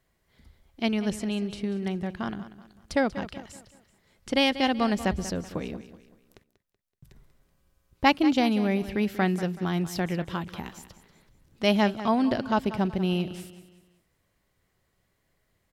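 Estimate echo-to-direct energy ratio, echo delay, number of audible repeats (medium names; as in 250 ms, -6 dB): -13.5 dB, 189 ms, 3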